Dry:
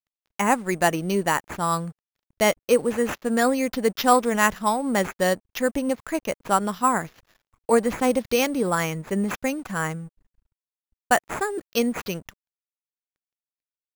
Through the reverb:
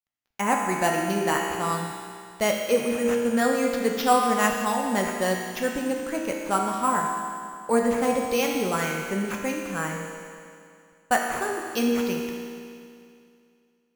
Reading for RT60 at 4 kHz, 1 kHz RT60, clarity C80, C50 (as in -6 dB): 2.4 s, 2.4 s, 2.5 dB, 1.5 dB